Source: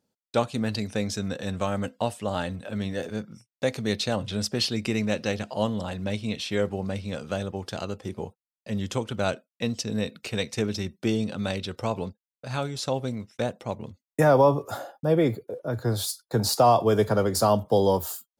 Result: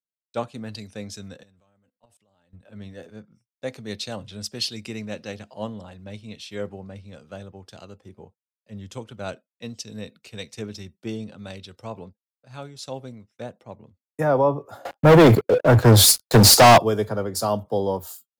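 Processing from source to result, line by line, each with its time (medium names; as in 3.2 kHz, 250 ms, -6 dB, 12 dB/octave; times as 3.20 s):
1.43–2.53 s: level held to a coarse grid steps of 23 dB
14.85–16.78 s: waveshaping leveller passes 5
whole clip: three bands expanded up and down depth 70%; trim -5.5 dB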